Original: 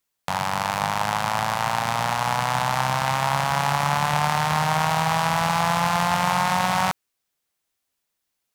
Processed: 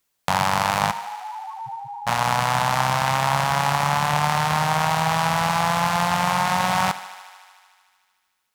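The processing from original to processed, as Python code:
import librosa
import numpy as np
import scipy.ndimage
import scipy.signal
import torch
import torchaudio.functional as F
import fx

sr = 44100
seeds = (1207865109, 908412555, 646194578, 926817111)

y = fx.rider(x, sr, range_db=4, speed_s=0.5)
y = fx.spec_topn(y, sr, count=1, at=(0.91, 2.07))
y = fx.echo_thinned(y, sr, ms=75, feedback_pct=80, hz=320.0, wet_db=-15.5)
y = F.gain(torch.from_numpy(y), 1.5).numpy()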